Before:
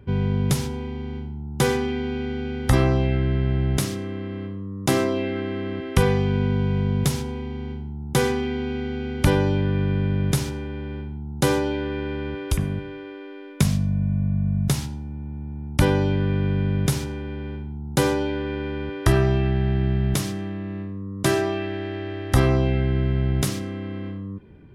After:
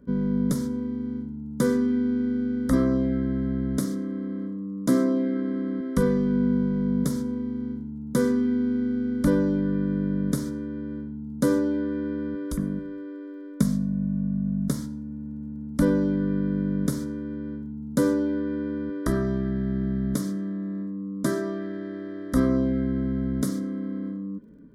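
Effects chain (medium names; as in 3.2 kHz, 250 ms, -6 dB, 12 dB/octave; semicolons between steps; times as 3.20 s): peaking EQ 280 Hz +14.5 dB 1.3 oct; static phaser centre 530 Hz, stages 8; crackle 28 per s -54 dBFS; trim -6.5 dB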